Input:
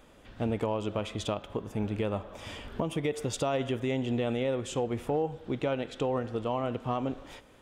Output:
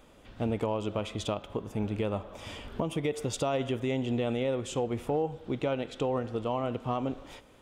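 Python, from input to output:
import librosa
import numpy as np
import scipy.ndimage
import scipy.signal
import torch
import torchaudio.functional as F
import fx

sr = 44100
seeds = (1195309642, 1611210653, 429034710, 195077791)

y = fx.peak_eq(x, sr, hz=1700.0, db=-3.5, octaves=0.35)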